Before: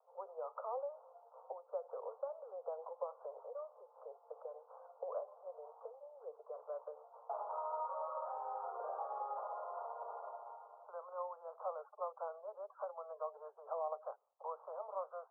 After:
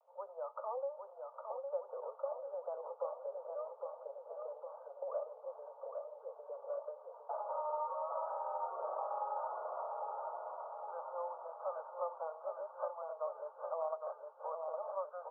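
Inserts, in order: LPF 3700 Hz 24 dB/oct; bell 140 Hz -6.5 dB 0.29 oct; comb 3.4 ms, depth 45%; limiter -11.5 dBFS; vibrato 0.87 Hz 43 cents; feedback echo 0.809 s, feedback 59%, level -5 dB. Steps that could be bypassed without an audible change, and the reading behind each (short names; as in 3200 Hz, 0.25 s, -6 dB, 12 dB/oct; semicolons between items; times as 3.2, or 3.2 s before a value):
LPF 3700 Hz: input band ends at 1400 Hz; bell 140 Hz: input band starts at 380 Hz; limiter -11.5 dBFS: input peak -26.5 dBFS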